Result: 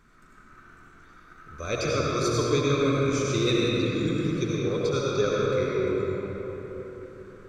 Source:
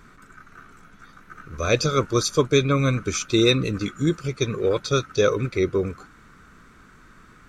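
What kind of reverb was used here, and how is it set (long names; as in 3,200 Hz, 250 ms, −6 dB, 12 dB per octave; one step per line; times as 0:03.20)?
comb and all-pass reverb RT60 4.1 s, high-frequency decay 0.55×, pre-delay 45 ms, DRR −5.5 dB
level −10 dB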